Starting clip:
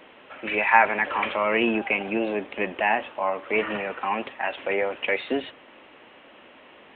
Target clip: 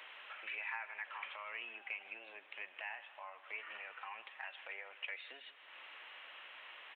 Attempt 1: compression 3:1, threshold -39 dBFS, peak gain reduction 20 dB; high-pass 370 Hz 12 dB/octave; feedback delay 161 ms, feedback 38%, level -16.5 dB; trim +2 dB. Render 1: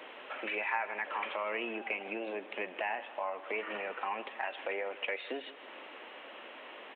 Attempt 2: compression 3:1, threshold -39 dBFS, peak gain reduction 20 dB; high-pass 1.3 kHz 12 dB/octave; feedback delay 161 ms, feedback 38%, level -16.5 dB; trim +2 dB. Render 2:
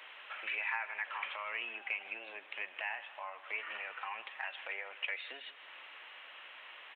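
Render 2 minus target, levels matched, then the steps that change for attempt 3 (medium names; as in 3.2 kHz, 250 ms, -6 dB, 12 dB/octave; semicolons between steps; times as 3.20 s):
compression: peak gain reduction -6 dB
change: compression 3:1, threshold -48 dBFS, peak gain reduction 26 dB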